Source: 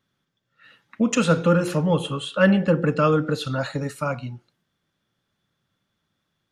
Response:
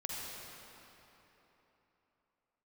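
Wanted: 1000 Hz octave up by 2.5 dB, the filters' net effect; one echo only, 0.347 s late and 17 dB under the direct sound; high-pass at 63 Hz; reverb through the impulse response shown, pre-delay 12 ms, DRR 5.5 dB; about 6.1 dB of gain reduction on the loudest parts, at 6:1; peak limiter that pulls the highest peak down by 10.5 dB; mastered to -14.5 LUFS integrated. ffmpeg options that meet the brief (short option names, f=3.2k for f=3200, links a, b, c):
-filter_complex "[0:a]highpass=63,equalizer=f=1k:t=o:g=3.5,acompressor=threshold=-18dB:ratio=6,alimiter=limit=-19dB:level=0:latency=1,aecho=1:1:347:0.141,asplit=2[a][b];[1:a]atrim=start_sample=2205,adelay=12[c];[b][c]afir=irnorm=-1:irlink=0,volume=-7.5dB[d];[a][d]amix=inputs=2:normalize=0,volume=13dB"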